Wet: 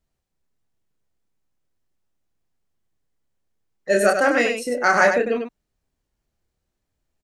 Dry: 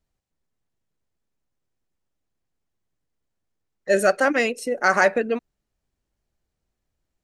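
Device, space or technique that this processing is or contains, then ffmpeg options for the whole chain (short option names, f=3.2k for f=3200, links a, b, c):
slapback doubling: -filter_complex "[0:a]asplit=3[a][b][c];[b]adelay=29,volume=-5dB[d];[c]adelay=98,volume=-6.5dB[e];[a][d][e]amix=inputs=3:normalize=0"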